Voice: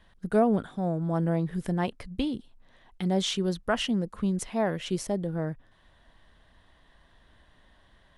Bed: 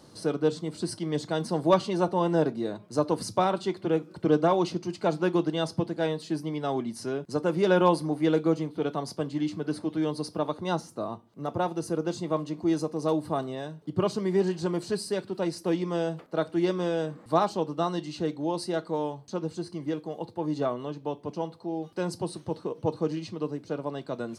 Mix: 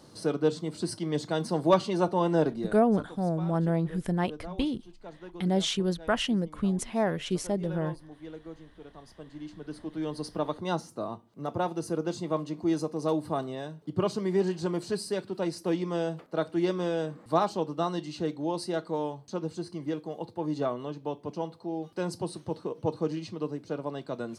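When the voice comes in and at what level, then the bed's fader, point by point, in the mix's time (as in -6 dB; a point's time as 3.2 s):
2.40 s, 0.0 dB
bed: 2.55 s -0.5 dB
3.07 s -19.5 dB
8.88 s -19.5 dB
10.34 s -1.5 dB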